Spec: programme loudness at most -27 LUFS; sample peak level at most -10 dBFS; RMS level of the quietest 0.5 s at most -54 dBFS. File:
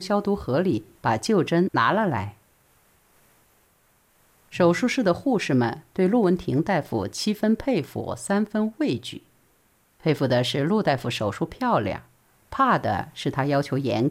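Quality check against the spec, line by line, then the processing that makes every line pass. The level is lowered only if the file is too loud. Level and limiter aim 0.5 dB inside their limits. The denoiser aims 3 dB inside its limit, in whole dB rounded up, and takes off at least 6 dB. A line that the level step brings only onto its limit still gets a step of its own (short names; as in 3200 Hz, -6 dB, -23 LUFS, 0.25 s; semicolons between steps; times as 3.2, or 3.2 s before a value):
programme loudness -24.0 LUFS: fail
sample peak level -8.5 dBFS: fail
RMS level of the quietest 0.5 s -63 dBFS: OK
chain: gain -3.5 dB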